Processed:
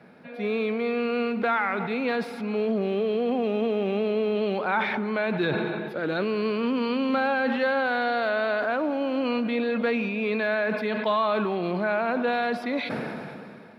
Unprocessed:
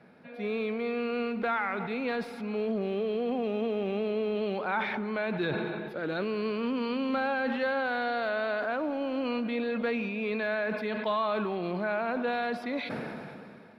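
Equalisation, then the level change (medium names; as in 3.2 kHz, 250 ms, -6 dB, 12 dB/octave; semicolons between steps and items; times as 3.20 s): high-pass 81 Hz; +5.0 dB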